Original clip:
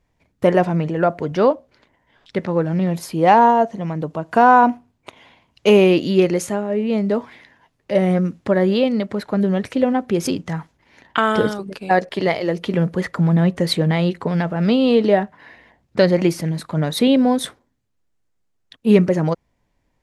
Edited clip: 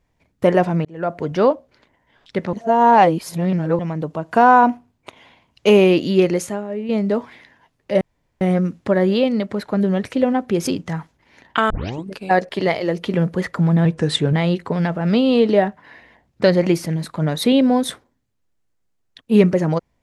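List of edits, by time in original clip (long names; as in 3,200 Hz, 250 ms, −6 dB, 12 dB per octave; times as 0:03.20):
0:00.85–0:01.24: fade in linear
0:02.53–0:03.79: reverse
0:06.35–0:06.89: fade out quadratic, to −6 dB
0:08.01: splice in room tone 0.40 s
0:11.30: tape start 0.36 s
0:13.45–0:13.88: play speed 90%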